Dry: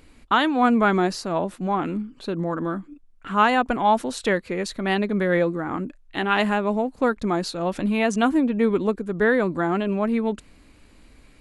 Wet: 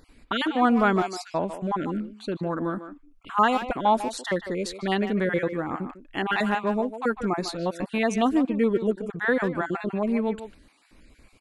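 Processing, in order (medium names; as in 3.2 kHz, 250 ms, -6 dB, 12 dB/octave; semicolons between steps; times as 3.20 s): random holes in the spectrogram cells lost 25%; speakerphone echo 150 ms, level -10 dB; trim -2 dB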